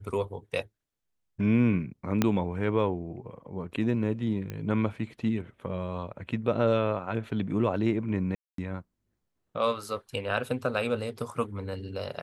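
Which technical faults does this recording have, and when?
2.22 s: pop -9 dBFS
4.50 s: pop -22 dBFS
8.35–8.58 s: dropout 233 ms

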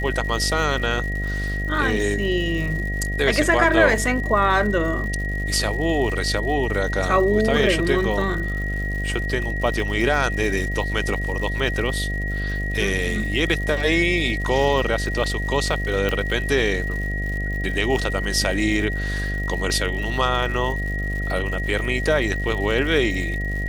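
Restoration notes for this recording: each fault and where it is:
buzz 50 Hz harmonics 15 -26 dBFS
crackle 160 per s -31 dBFS
whine 1.9 kHz -28 dBFS
16.09 s: pop -10 dBFS

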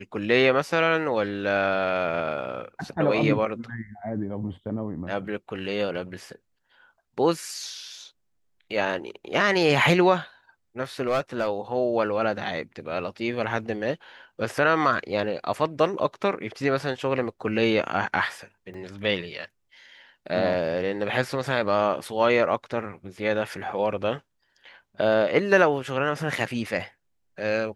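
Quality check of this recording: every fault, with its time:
11.07–11.48 s: clipped -19 dBFS
18.74 s: dropout 4.2 ms

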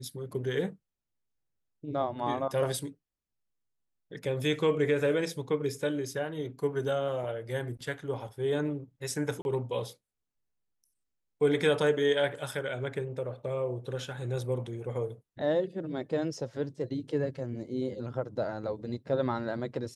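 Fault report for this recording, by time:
9.42–9.45 s: dropout 31 ms

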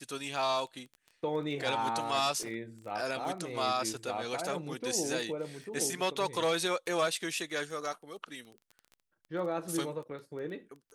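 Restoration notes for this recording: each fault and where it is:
crackle 14 per s -41 dBFS
2.43 s: dropout 2.2 ms

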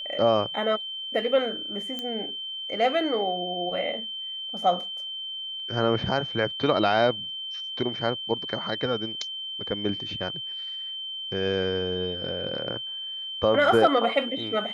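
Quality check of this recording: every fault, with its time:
whine 3.1 kHz -32 dBFS
1.99 s: pop -18 dBFS

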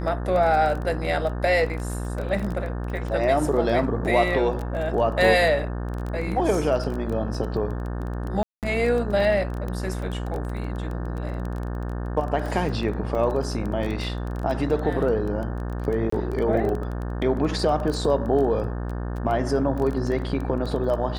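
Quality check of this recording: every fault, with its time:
buzz 60 Hz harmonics 30 -29 dBFS
crackle 15 per s -28 dBFS
8.43–8.63 s: dropout 198 ms
13.15 s: dropout 3.3 ms
16.10–16.12 s: dropout 24 ms

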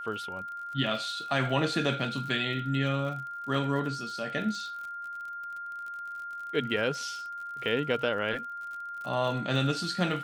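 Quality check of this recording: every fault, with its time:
crackle 56 per s -39 dBFS
whine 1.4 kHz -36 dBFS

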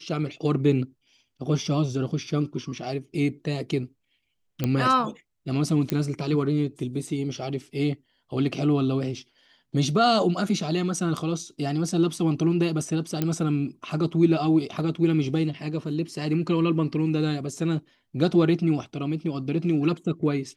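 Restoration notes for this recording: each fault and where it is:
4.64 s: pop -11 dBFS
5.90 s: pop -12 dBFS
13.22 s: pop -11 dBFS

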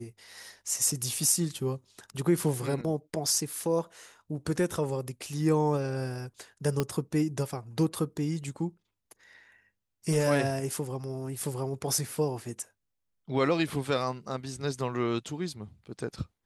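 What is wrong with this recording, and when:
6.80 s: pop -13 dBFS

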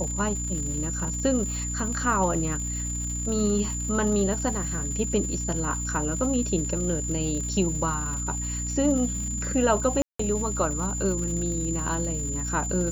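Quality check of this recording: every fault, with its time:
crackle 230 per s -34 dBFS
hum 60 Hz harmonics 5 -32 dBFS
whine 7.1 kHz -31 dBFS
10.02–10.19 s: dropout 174 ms

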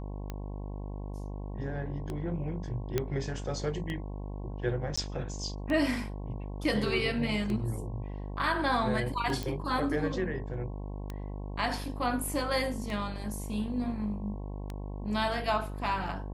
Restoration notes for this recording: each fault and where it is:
buzz 50 Hz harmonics 22 -38 dBFS
tick 33 1/3 rpm -23 dBFS
2.98 s: pop -14 dBFS
4.96–4.97 s: dropout 15 ms
9.43 s: pop -20 dBFS

